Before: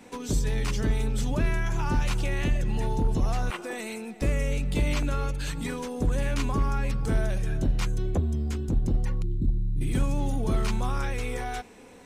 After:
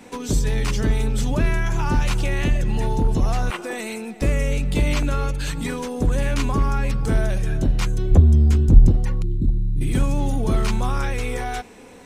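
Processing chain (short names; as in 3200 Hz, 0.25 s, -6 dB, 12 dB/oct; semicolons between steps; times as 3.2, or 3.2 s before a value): 8.11–8.91 low shelf 160 Hz +11 dB; gain +5.5 dB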